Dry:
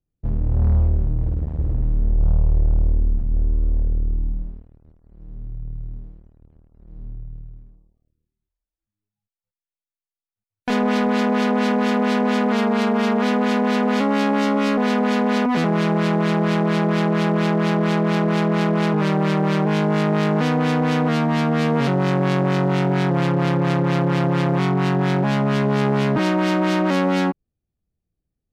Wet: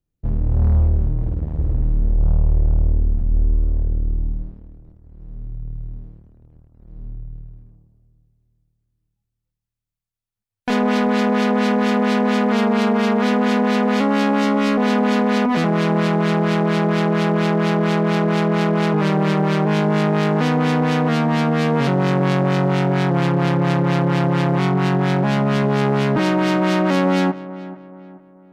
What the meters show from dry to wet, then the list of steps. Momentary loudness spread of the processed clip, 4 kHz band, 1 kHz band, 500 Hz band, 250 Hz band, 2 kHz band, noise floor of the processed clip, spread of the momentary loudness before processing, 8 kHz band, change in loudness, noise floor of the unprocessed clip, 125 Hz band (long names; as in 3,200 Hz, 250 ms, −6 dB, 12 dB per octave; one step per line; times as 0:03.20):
9 LU, +1.5 dB, +1.5 dB, +1.5 dB, +1.5 dB, +1.5 dB, −79 dBFS, 6 LU, can't be measured, +1.5 dB, below −85 dBFS, +1.5 dB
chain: feedback echo with a low-pass in the loop 432 ms, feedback 41%, level −16 dB
level +1.5 dB